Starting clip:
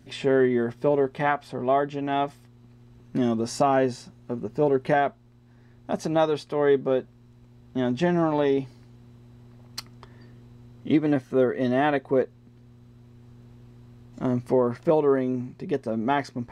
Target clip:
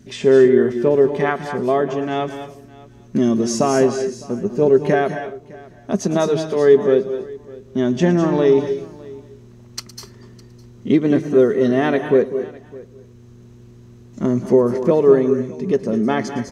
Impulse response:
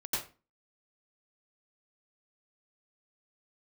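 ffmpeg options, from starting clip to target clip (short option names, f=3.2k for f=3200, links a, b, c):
-filter_complex "[0:a]equalizer=f=200:t=o:w=0.33:g=11,equalizer=f=400:t=o:w=0.33:g=7,equalizer=f=800:t=o:w=0.33:g=-6,equalizer=f=6.3k:t=o:w=0.33:g=10,aecho=1:1:608:0.0794,asplit=2[a][b];[1:a]atrim=start_sample=2205,highshelf=f=6.4k:g=11,adelay=112[c];[b][c]afir=irnorm=-1:irlink=0,volume=-13.5dB[d];[a][d]amix=inputs=2:normalize=0,volume=3.5dB"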